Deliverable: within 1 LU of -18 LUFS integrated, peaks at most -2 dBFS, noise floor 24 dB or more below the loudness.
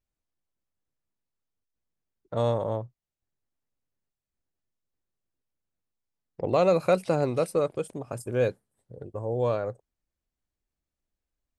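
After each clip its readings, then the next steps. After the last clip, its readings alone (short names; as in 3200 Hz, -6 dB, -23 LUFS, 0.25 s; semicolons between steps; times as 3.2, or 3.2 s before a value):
loudness -27.5 LUFS; peak -10.5 dBFS; loudness target -18.0 LUFS
-> gain +9.5 dB; limiter -2 dBFS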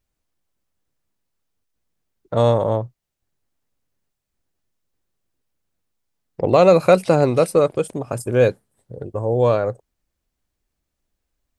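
loudness -18.0 LUFS; peak -2.0 dBFS; noise floor -80 dBFS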